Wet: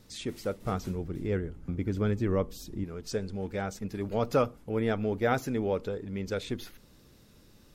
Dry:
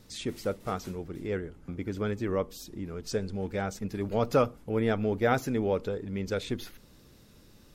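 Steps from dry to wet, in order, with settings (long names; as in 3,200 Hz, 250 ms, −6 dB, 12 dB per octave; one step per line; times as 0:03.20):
0:00.61–0:02.84: low-shelf EQ 240 Hz +9 dB
level −1.5 dB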